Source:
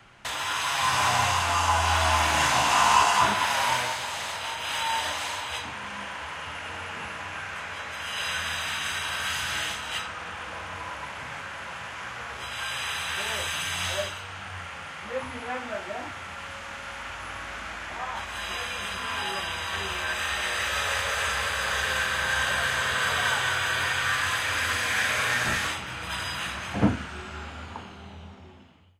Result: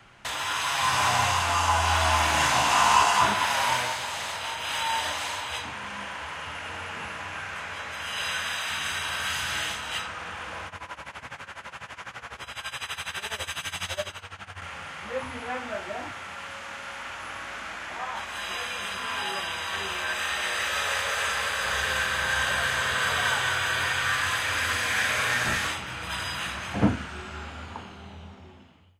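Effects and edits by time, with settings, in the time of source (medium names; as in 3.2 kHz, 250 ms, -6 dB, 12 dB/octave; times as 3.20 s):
8.29–8.69 s: high-pass 110 Hz -> 370 Hz 6 dB/octave
10.67–14.62 s: tremolo 12 Hz, depth 87%
16.12–21.65 s: high-pass 160 Hz 6 dB/octave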